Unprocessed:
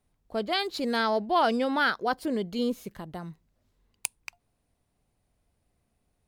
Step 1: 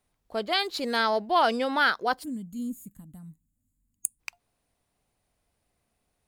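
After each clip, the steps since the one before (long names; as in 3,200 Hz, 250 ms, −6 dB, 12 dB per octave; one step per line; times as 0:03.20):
gain on a spectral selection 0:02.23–0:04.20, 310–6,600 Hz −23 dB
low-shelf EQ 390 Hz −8.5 dB
level +3 dB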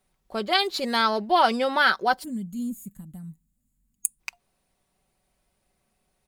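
comb filter 5.3 ms, depth 49%
level +2.5 dB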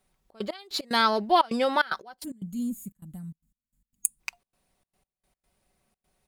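gate pattern "xxx.x..x.xxxxx." 149 BPM −24 dB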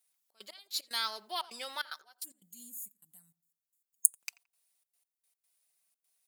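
first difference
tape delay 86 ms, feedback 42%, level −16.5 dB, low-pass 1,200 Hz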